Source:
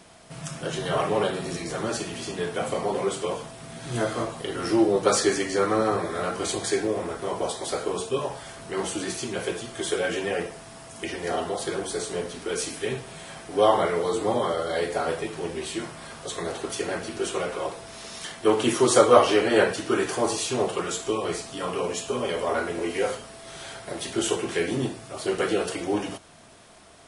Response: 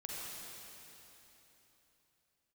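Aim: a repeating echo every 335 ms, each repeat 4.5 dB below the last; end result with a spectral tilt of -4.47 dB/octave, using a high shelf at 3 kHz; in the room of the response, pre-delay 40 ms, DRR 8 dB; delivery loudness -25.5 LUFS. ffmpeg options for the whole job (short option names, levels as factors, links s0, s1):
-filter_complex "[0:a]highshelf=f=3000:g=-9,aecho=1:1:335|670|1005|1340|1675|2010|2345|2680|3015:0.596|0.357|0.214|0.129|0.0772|0.0463|0.0278|0.0167|0.01,asplit=2[s0][s1];[1:a]atrim=start_sample=2205,adelay=40[s2];[s1][s2]afir=irnorm=-1:irlink=0,volume=0.398[s3];[s0][s3]amix=inputs=2:normalize=0,volume=0.944"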